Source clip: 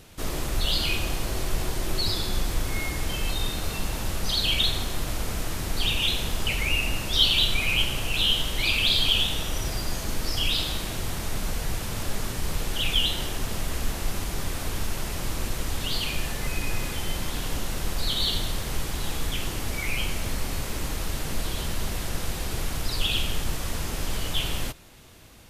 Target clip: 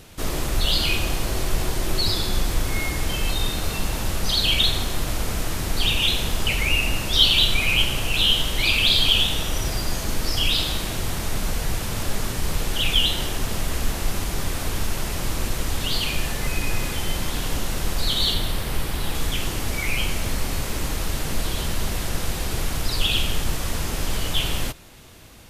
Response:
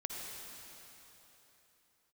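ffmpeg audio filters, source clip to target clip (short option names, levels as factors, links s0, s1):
-filter_complex "[0:a]asettb=1/sr,asplit=3[s0][s1][s2];[s0]atrim=end=18.334[s3];[s1]atrim=start=18.33:end=19.15,asetpts=PTS-STARTPTS,afade=t=in:d=0.004:c=qsin,afade=t=out:st=0.816:d=0.004:c=qsin,equalizer=f=6600:t=o:w=0.68:g=-6[s4];[s2]atrim=start=19.146[s5];[s3][s4]acrossfade=d=0.004:c1=hsin:c2=qsin[s6];[s6][s5]acrossfade=d=0.004:c1=qsin:c2=hsin,volume=1.58"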